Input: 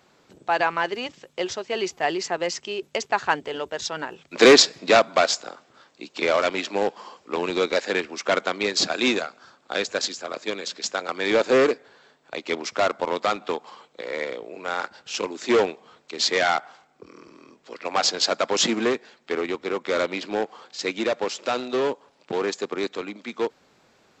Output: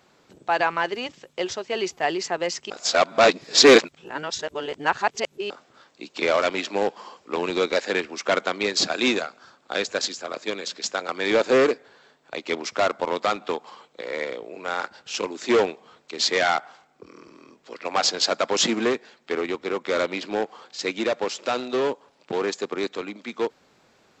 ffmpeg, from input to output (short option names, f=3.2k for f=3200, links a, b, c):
-filter_complex "[0:a]asplit=3[a][b][c];[a]atrim=end=2.702[d];[b]atrim=start=2.698:end=5.502,asetpts=PTS-STARTPTS,areverse[e];[c]atrim=start=5.498[f];[d][e]acrossfade=d=0.004:c1=hsin:c2=hsin[g];[g][f]acrossfade=d=0.004:c1=hsin:c2=hsin"